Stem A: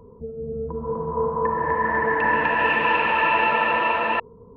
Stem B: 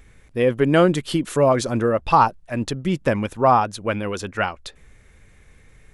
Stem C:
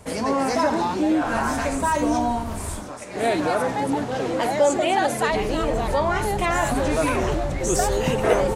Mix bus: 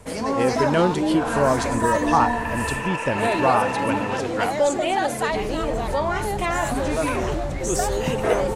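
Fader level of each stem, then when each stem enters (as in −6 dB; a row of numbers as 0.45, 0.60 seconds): −8.0, −4.0, −1.5 decibels; 0.00, 0.00, 0.00 seconds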